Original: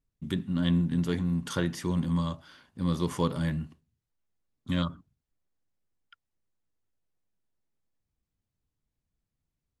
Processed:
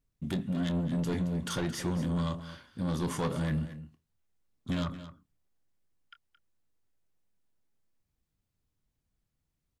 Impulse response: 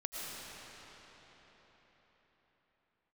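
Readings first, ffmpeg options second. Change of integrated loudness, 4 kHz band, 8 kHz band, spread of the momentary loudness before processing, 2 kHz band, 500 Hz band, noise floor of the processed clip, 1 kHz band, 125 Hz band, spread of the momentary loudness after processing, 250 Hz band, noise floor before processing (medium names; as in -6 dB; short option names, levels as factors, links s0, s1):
-3.0 dB, -2.5 dB, +1.5 dB, 8 LU, -1.5 dB, -1.5 dB, -83 dBFS, -1.5 dB, -3.0 dB, 15 LU, -3.0 dB, under -85 dBFS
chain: -filter_complex "[0:a]asoftclip=type=tanh:threshold=0.0422,asplit=2[s0][s1];[s1]adelay=26,volume=0.237[s2];[s0][s2]amix=inputs=2:normalize=0,aecho=1:1:221:0.211,volume=1.26"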